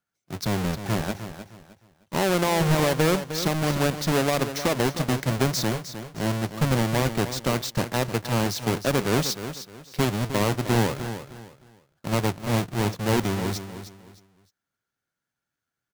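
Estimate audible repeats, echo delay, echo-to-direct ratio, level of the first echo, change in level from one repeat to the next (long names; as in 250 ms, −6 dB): 3, 308 ms, −10.5 dB, −11.0 dB, −11.0 dB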